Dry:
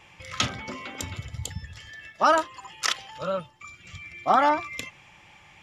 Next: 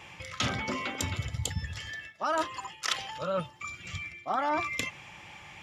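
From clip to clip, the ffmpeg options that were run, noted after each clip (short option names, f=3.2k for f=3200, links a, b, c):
-af "highpass=50,areverse,acompressor=threshold=-32dB:ratio=6,areverse,volume=4.5dB"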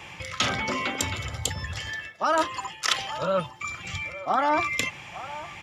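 -filter_complex "[0:a]acrossover=split=400|1600[a][b][c];[a]alimiter=level_in=10.5dB:limit=-24dB:level=0:latency=1,volume=-10.5dB[d];[b]aecho=1:1:861:0.224[e];[d][e][c]amix=inputs=3:normalize=0,volume=6dB"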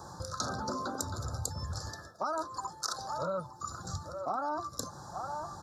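-af "asuperstop=centerf=2500:order=12:qfactor=1,acompressor=threshold=-33dB:ratio=4"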